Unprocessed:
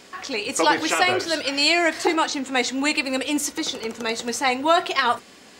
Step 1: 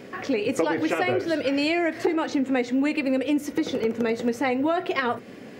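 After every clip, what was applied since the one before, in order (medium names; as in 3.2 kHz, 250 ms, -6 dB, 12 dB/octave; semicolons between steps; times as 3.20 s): graphic EQ 125/250/500/1000/2000/4000/8000 Hz +12/+7/+9/-4/+4/-6/-11 dB; compression 5:1, threshold -21 dBFS, peak gain reduction 12 dB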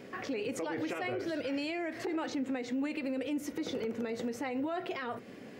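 peak limiter -21 dBFS, peak gain reduction 11 dB; trim -6.5 dB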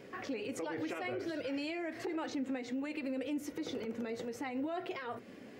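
flange 1.4 Hz, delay 1.8 ms, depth 2 ms, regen -65%; trim +1 dB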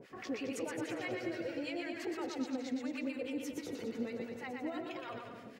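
harmonic tremolo 6.2 Hz, depth 100%, crossover 950 Hz; on a send: bouncing-ball echo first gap 120 ms, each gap 0.8×, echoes 5; on the sum: trim +1.5 dB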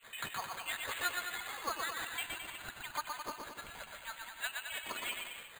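frequency inversion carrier 3.6 kHz; careless resampling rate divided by 8×, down filtered, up hold; trim +8.5 dB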